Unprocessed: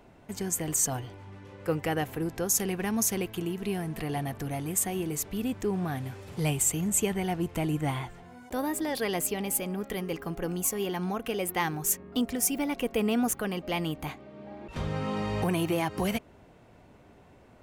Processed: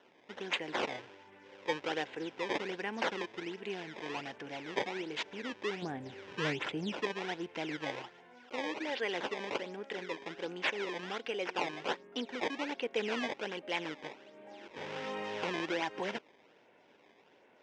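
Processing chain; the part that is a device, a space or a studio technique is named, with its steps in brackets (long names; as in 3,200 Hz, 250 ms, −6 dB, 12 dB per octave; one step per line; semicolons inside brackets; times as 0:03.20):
0:05.82–0:07.01: tilt shelving filter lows +8.5 dB, about 890 Hz
circuit-bent sampling toy (sample-and-hold swept by an LFO 18×, swing 160% 1.3 Hz; loudspeaker in its box 500–4,700 Hz, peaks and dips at 690 Hz −8 dB, 1,200 Hz −10 dB, 4,300 Hz −9 dB)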